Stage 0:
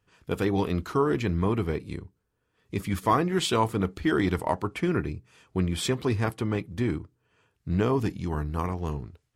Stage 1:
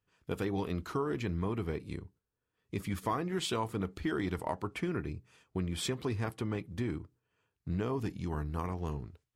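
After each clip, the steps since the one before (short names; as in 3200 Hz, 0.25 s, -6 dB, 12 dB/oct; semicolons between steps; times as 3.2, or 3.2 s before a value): gate -55 dBFS, range -7 dB; compressor 2.5:1, threshold -27 dBFS, peak gain reduction 7 dB; gain -4.5 dB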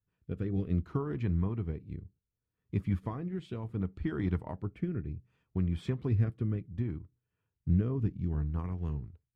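rotary speaker horn 0.65 Hz; tone controls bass +12 dB, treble -14 dB; upward expander 1.5:1, over -36 dBFS; gain -1.5 dB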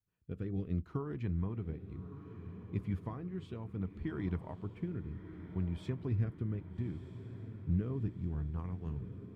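diffused feedback echo 1.251 s, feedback 53%, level -11 dB; gain -5 dB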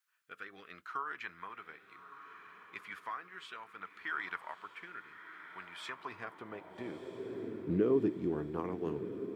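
high-pass sweep 1400 Hz -> 360 Hz, 5.75–7.47; gain +9 dB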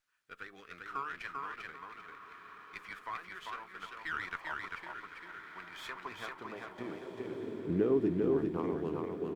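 on a send: feedback echo 0.395 s, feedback 25%, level -3 dB; on the sum: running maximum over 3 samples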